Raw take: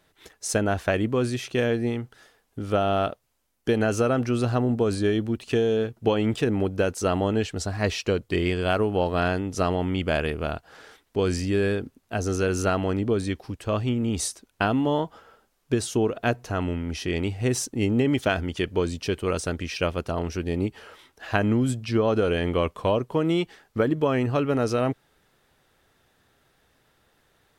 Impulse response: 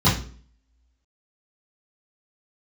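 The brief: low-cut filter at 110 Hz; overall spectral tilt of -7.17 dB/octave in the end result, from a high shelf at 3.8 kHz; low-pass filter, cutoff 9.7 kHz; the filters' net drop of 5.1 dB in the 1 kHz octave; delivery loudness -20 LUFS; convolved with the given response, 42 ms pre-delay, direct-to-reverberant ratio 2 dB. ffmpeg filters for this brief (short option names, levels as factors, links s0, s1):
-filter_complex "[0:a]highpass=110,lowpass=9700,equalizer=f=1000:t=o:g=-8.5,highshelf=f=3800:g=6.5,asplit=2[s0][s1];[1:a]atrim=start_sample=2205,adelay=42[s2];[s1][s2]afir=irnorm=-1:irlink=0,volume=0.0944[s3];[s0][s3]amix=inputs=2:normalize=0"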